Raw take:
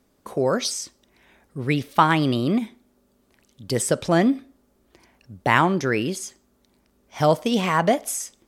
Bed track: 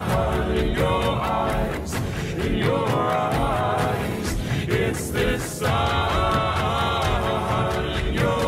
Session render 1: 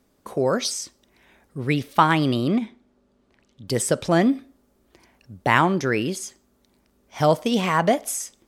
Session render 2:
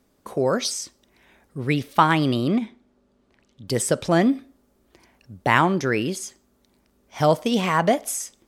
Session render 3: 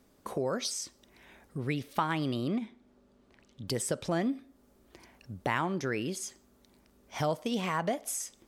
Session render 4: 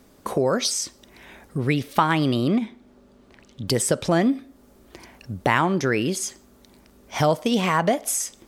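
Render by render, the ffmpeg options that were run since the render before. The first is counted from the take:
-filter_complex "[0:a]asettb=1/sr,asplit=3[a][b][c];[a]atrim=end=2.484[d];[b]atrim=start=2.48:end=3.68,asetpts=PTS-STARTPTS,afade=t=in:d=0.004:c=qsin,afade=t=out:st=1.196:d=0.004:c=qsin,adynamicsmooth=sensitivity=7:basefreq=5.4k[e];[c]atrim=start=3.676[f];[d][e]acrossfade=d=0.004:c1=hsin:c2=qsin[g];[g][f]acrossfade=d=0.004:c1=qsin:c2=hsin"
-af anull
-af "acompressor=threshold=-37dB:ratio=2"
-af "volume=10.5dB"

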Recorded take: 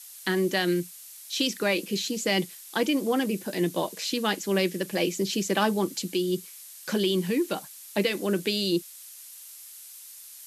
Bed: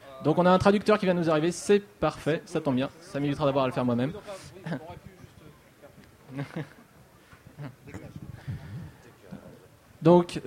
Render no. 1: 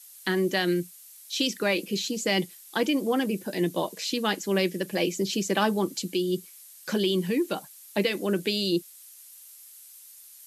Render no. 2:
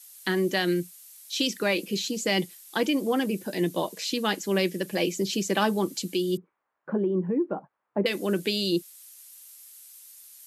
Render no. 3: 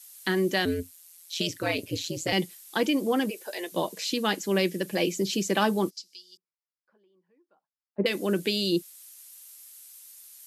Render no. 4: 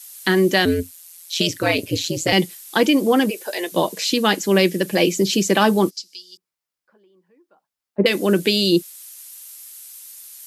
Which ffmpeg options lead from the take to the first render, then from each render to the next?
-af "afftdn=nr=6:nf=-46"
-filter_complex "[0:a]asettb=1/sr,asplit=3[a][b][c];[a]atrim=end=6.374[d];[b]atrim=start=6.37:end=8.06,asetpts=PTS-STARTPTS,afade=t=in:d=0.004:c=qsin,afade=t=out:st=1.686:d=0.004:c=qsin,lowpass=f=1.2k:w=0.5412,lowpass=f=1.2k:w=1.3066[e];[c]atrim=start=8.056[f];[d][e]acrossfade=d=0.004:c1=hsin:c2=qsin[g];[g][f]acrossfade=d=0.004:c1=qsin:c2=hsin"
-filter_complex "[0:a]asettb=1/sr,asplit=3[a][b][c];[a]atrim=end=0.654[d];[b]atrim=start=0.65:end=2.33,asetpts=PTS-STARTPTS,afade=t=in:d=0.004:c=qsin,afade=t=out:st=1.676:d=0.004:c=qsin,aeval=exprs='val(0)*sin(2*PI*85*n/s)':c=same[e];[c]atrim=start=2.326[f];[d][e]acrossfade=d=0.004:c1=hsin:c2=qsin[g];[g][f]acrossfade=d=0.004:c1=qsin:c2=hsin,asplit=3[h][i][j];[h]afade=t=out:st=3.29:d=0.02[k];[i]highpass=f=480:w=0.5412,highpass=f=480:w=1.3066,afade=t=in:st=3.29:d=0.02,afade=t=out:st=3.72:d=0.02[l];[j]afade=t=in:st=3.72:d=0.02[m];[k][l][m]amix=inputs=3:normalize=0,asplit=3[n][o][p];[n]afade=t=out:st=5.89:d=0.02[q];[o]bandpass=f=5.1k:t=q:w=6.7,afade=t=in:st=5.89:d=0.02,afade=t=out:st=7.98:d=0.02[r];[p]afade=t=in:st=7.98:d=0.02[s];[q][r][s]amix=inputs=3:normalize=0"
-af "volume=9dB,alimiter=limit=-3dB:level=0:latency=1"

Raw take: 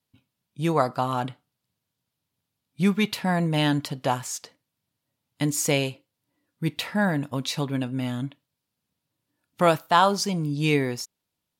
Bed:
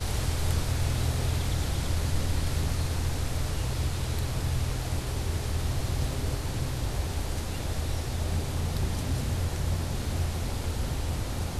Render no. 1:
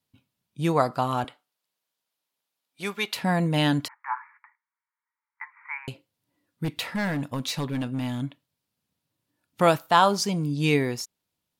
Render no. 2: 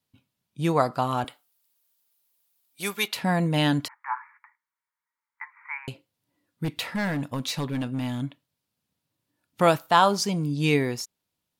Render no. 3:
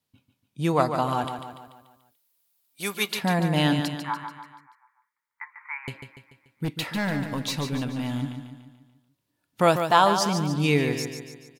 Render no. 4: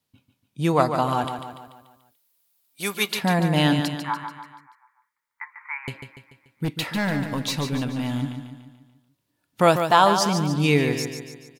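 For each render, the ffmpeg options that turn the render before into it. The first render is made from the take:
-filter_complex "[0:a]asettb=1/sr,asplit=3[a][b][c];[a]atrim=end=1.244[d];[b]atrim=start=1.24:end=3.16,asetpts=PTS-STARTPTS,afade=t=in:d=0.004:c=qsin,afade=t=out:st=1.916:d=0.004:c=qsin,highpass=500[e];[c]atrim=start=3.156[f];[d][e]acrossfade=d=0.004:c1=hsin:c2=qsin[g];[g][f]acrossfade=d=0.004:c1=qsin:c2=hsin,asettb=1/sr,asplit=3[h][i][j];[h]atrim=end=3.884[k];[i]atrim=start=3.88:end=5.88,asetpts=PTS-STARTPTS,afade=t=in:d=0.004:c=qsin,afade=t=out:st=1.996:d=0.004:c=qsin,asuperpass=centerf=1400:order=20:qfactor=0.98[l];[j]atrim=start=5.876[m];[k][l]acrossfade=d=0.004:c1=hsin:c2=qsin[n];[n][m]acrossfade=d=0.004:c1=qsin:c2=hsin,asettb=1/sr,asplit=3[o][p][q];[o]atrim=end=6.644[r];[p]atrim=start=6.64:end=8.21,asetpts=PTS-STARTPTS,afade=t=in:d=0.004:c=qsin,afade=t=out:st=1.566:d=0.004:c=qsin,asoftclip=type=hard:threshold=-23.5dB[s];[q]atrim=start=8.206[t];[r][s]acrossfade=d=0.004:c1=hsin:c2=qsin[u];[u][t]acrossfade=d=0.004:c1=qsin:c2=hsin"
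-filter_complex "[0:a]asettb=1/sr,asplit=3[a][b][c];[a]atrim=end=1.264[d];[b]atrim=start=1.26:end=3.08,asetpts=PTS-STARTPTS,afade=t=in:d=0.004:c=qsin,afade=t=out:st=1.816:d=0.004:c=qsin,aemphasis=mode=production:type=50fm[e];[c]atrim=start=3.076[f];[d][e]acrossfade=d=0.004:c1=hsin:c2=qsin[g];[g][f]acrossfade=d=0.004:c1=qsin:c2=hsin"
-af "aecho=1:1:145|290|435|580|725|870:0.398|0.199|0.0995|0.0498|0.0249|0.0124"
-af "volume=2.5dB,alimiter=limit=-2dB:level=0:latency=1"

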